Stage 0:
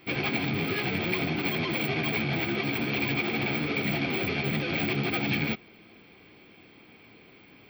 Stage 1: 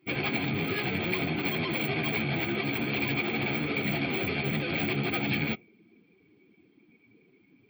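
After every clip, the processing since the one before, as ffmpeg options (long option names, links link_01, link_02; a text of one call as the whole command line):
ffmpeg -i in.wav -af "afftdn=noise_reduction=18:noise_floor=-45,volume=-1dB" out.wav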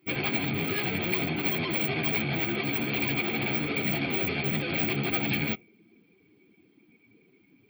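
ffmpeg -i in.wav -af "highshelf=frequency=8900:gain=8.5" out.wav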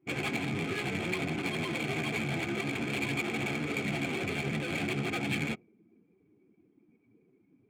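ffmpeg -i in.wav -af "adynamicsmooth=sensitivity=7.5:basefreq=1200,volume=-3dB" out.wav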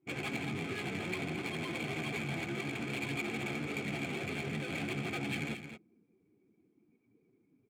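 ffmpeg -i in.wav -af "aecho=1:1:222:0.335,volume=-5dB" out.wav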